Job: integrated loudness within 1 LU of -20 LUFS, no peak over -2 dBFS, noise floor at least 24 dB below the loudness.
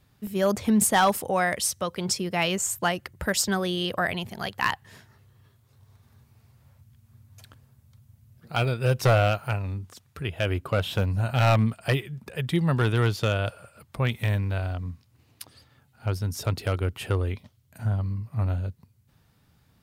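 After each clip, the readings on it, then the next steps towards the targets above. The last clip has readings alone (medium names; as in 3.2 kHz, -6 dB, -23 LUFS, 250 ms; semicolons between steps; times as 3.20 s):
clipped samples 0.4%; clipping level -14.0 dBFS; dropouts 1; longest dropout 1.9 ms; loudness -26.0 LUFS; peak level -14.0 dBFS; loudness target -20.0 LUFS
-> clip repair -14 dBFS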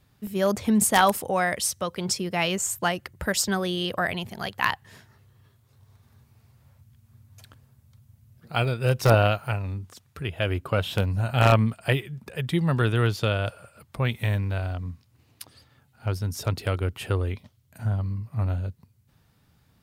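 clipped samples 0.0%; dropouts 1; longest dropout 1.9 ms
-> interpolate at 0.27 s, 1.9 ms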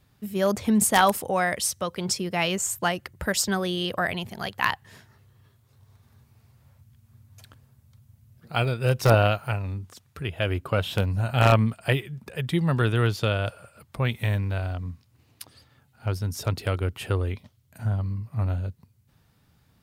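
dropouts 0; loudness -25.5 LUFS; peak level -5.0 dBFS; loudness target -20.0 LUFS
-> trim +5.5 dB; peak limiter -2 dBFS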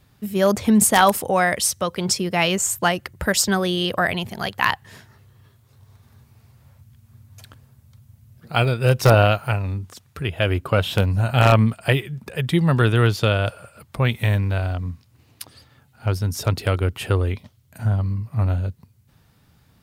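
loudness -20.5 LUFS; peak level -2.0 dBFS; noise floor -58 dBFS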